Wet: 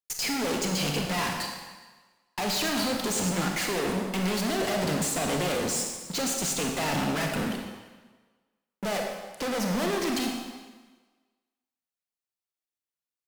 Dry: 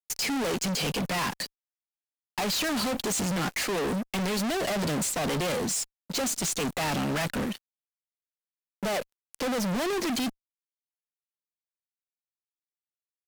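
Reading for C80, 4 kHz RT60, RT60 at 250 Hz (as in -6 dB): 4.5 dB, 1.2 s, 1.3 s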